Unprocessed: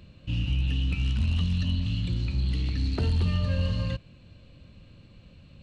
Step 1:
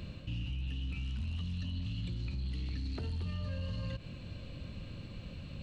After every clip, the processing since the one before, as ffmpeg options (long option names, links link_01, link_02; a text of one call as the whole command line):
ffmpeg -i in.wav -af "areverse,acompressor=threshold=-32dB:ratio=6,areverse,alimiter=level_in=13.5dB:limit=-24dB:level=0:latency=1:release=78,volume=-13.5dB,volume=6.5dB" out.wav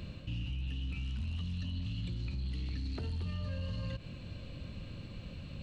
ffmpeg -i in.wav -af anull out.wav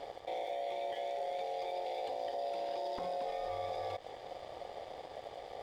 ffmpeg -i in.wav -af "aeval=exprs='val(0)*sin(2*PI*630*n/s)':channel_layout=same,aeval=exprs='sgn(val(0))*max(abs(val(0))-0.00112,0)':channel_layout=same,volume=2dB" out.wav